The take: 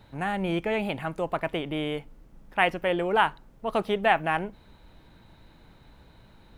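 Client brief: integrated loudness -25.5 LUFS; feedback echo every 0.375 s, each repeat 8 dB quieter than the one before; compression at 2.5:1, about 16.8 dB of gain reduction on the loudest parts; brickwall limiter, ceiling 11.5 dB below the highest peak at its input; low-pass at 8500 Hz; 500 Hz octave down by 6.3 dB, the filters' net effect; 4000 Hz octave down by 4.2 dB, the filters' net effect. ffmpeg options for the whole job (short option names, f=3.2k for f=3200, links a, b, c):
-af "lowpass=8.5k,equalizer=f=500:t=o:g=-8.5,equalizer=f=4k:t=o:g=-6.5,acompressor=threshold=-46dB:ratio=2.5,alimiter=level_in=13.5dB:limit=-24dB:level=0:latency=1,volume=-13.5dB,aecho=1:1:375|750|1125|1500|1875:0.398|0.159|0.0637|0.0255|0.0102,volume=23.5dB"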